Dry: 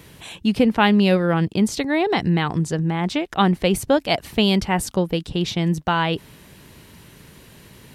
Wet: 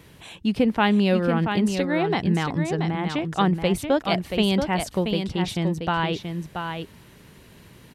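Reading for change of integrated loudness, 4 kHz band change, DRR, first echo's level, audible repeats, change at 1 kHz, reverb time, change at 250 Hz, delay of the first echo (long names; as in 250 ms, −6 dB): −3.0 dB, −4.0 dB, no reverb audible, −6.5 dB, 1, −3.0 dB, no reverb audible, −2.5 dB, 680 ms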